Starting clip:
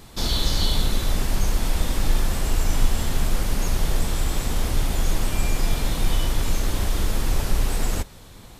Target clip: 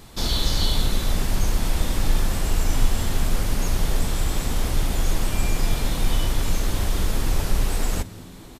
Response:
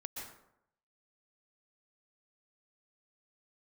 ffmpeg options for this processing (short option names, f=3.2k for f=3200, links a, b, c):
-filter_complex "[0:a]asplit=6[a][b][c][d][e][f];[b]adelay=219,afreqshift=77,volume=-22.5dB[g];[c]adelay=438,afreqshift=154,volume=-26.8dB[h];[d]adelay=657,afreqshift=231,volume=-31.1dB[i];[e]adelay=876,afreqshift=308,volume=-35.4dB[j];[f]adelay=1095,afreqshift=385,volume=-39.7dB[k];[a][g][h][i][j][k]amix=inputs=6:normalize=0"